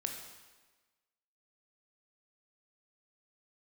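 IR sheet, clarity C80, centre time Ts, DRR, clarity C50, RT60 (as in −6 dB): 6.5 dB, 39 ms, 2.5 dB, 5.0 dB, 1.3 s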